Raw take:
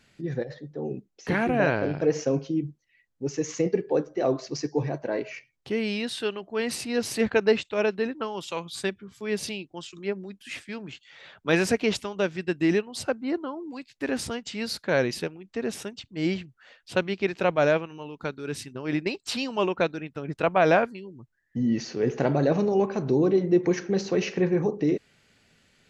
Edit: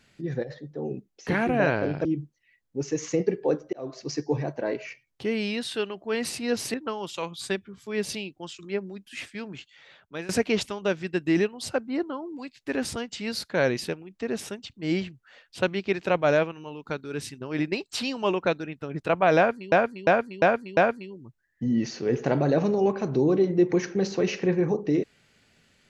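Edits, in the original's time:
2.05–2.51 cut
4.19–4.58 fade in
7.2–8.08 cut
10.9–11.63 fade out, to -20 dB
20.71–21.06 loop, 5 plays

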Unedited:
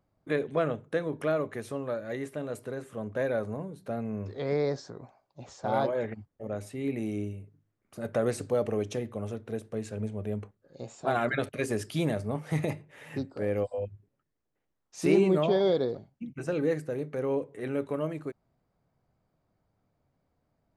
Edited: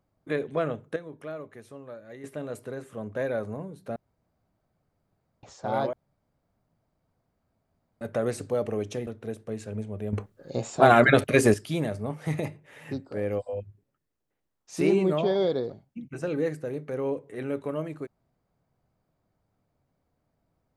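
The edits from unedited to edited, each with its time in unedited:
0.96–2.24 gain -9.5 dB
3.96–5.43 room tone
5.93–8.01 room tone
9.07–9.32 cut
10.38–11.79 gain +11 dB

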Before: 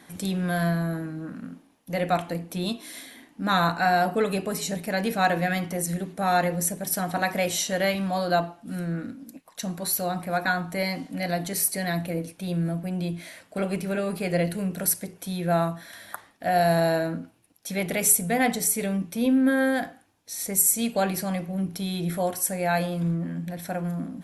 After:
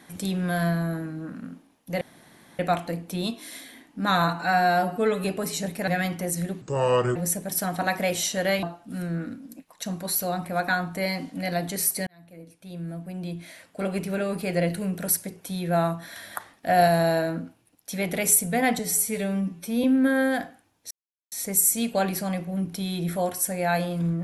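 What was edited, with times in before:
2.01 insert room tone 0.58 s
3.66–4.33 stretch 1.5×
4.96–5.39 cut
6.13–6.51 speed 70%
7.98–8.4 cut
11.84–13.81 fade in
15.79–16.65 gain +3 dB
18.56–19.26 stretch 1.5×
20.33 insert silence 0.41 s

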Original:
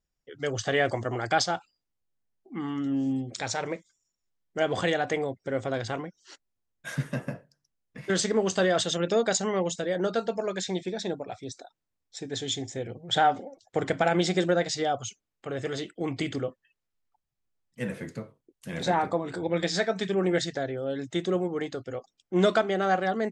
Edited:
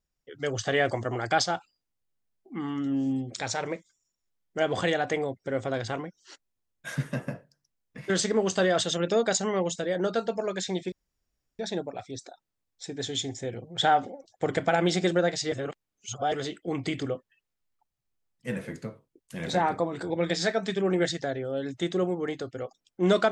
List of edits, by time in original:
10.92 insert room tone 0.67 s
14.85–15.65 reverse

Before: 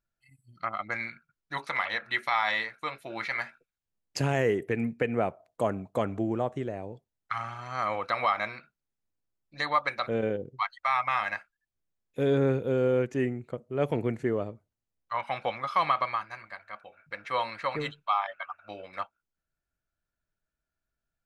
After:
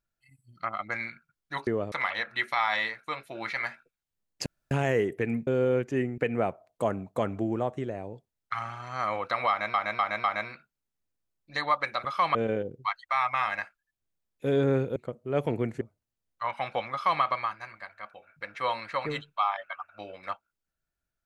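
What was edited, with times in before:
4.21 insert room tone 0.25 s
8.28–8.53 loop, 4 plays
12.7–13.41 move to 4.97
14.26–14.51 move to 1.67
15.62–15.92 copy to 10.09

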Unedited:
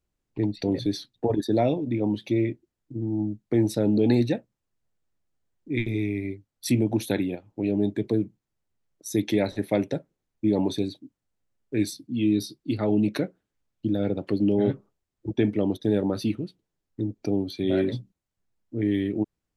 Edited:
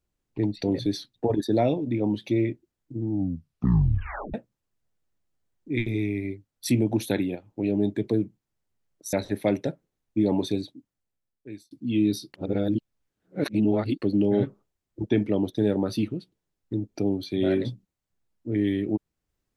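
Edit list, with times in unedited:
3.11 tape stop 1.23 s
9.13–9.4 cut
10.88–11.98 fade out
12.61–14.29 reverse

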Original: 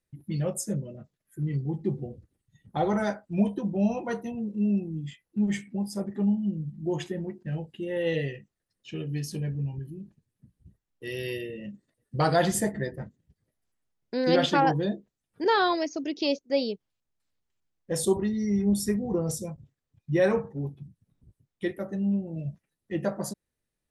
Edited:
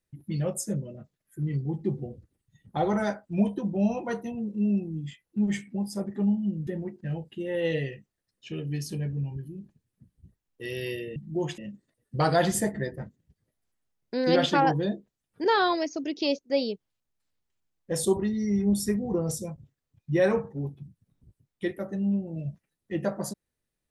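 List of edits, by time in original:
6.67–7.09 move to 11.58

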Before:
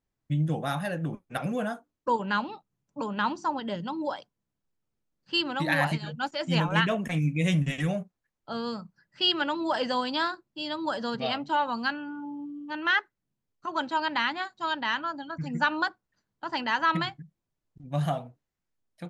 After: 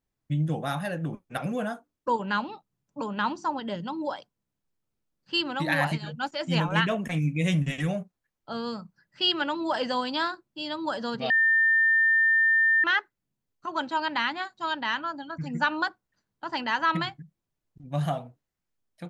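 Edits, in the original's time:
11.3–12.84 bleep 1800 Hz -18 dBFS

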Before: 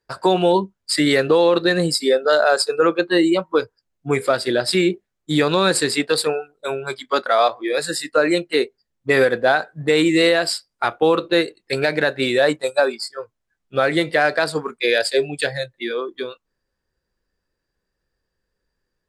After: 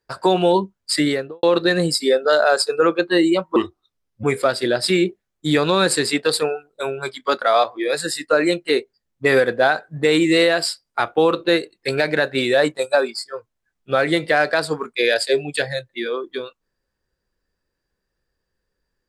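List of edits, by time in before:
0.94–1.43 studio fade out
3.56–4.08 speed 77%

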